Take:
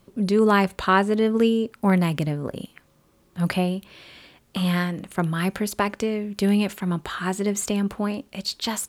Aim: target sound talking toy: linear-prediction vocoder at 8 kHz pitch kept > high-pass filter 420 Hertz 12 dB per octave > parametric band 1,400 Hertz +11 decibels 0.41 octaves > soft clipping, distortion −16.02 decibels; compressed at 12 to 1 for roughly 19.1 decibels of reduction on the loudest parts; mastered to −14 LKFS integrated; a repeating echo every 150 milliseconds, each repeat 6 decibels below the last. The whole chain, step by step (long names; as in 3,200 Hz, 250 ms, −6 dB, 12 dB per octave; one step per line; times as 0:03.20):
downward compressor 12 to 1, threshold −34 dBFS
repeating echo 150 ms, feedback 50%, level −6 dB
linear-prediction vocoder at 8 kHz pitch kept
high-pass filter 420 Hz 12 dB per octave
parametric band 1,400 Hz +11 dB 0.41 octaves
soft clipping −28 dBFS
level +28 dB